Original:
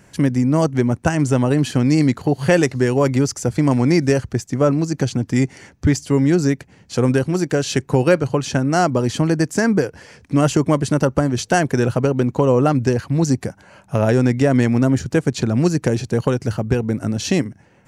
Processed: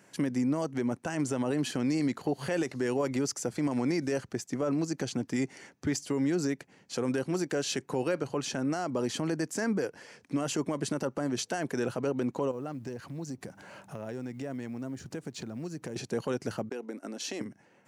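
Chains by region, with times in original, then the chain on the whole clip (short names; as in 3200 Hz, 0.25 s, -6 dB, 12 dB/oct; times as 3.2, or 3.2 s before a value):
12.51–15.96 G.711 law mismatch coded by mu + compressor 3:1, threshold -32 dBFS + low shelf 150 Hz +11 dB
16.69–17.41 HPF 250 Hz 24 dB/oct + expander -27 dBFS + compressor, threshold -25 dBFS
whole clip: HPF 220 Hz 12 dB/oct; limiter -13.5 dBFS; gain -7.5 dB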